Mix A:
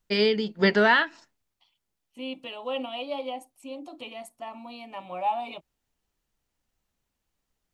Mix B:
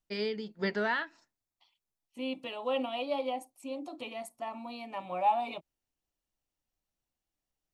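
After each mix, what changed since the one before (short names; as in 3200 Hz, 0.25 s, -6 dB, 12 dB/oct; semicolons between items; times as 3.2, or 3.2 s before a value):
first voice -11.0 dB; master: add bell 3000 Hz -4.5 dB 0.31 oct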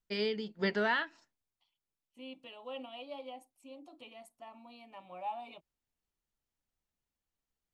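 second voice -12.0 dB; master: add bell 3000 Hz +4.5 dB 0.31 oct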